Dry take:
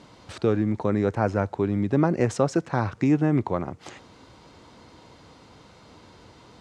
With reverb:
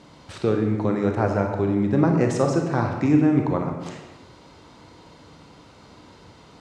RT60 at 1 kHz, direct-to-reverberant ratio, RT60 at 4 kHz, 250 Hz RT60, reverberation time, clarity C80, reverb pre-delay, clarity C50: 1.1 s, 2.5 dB, 0.85 s, 1.2 s, 1.1 s, 6.5 dB, 28 ms, 4.5 dB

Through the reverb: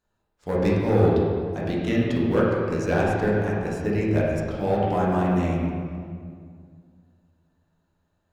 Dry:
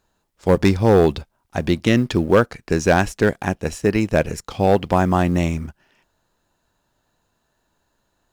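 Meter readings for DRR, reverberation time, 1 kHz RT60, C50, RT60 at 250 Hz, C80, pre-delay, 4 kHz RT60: -6.5 dB, 2.1 s, 1.9 s, -1.5 dB, 2.7 s, 0.5 dB, 5 ms, 1.4 s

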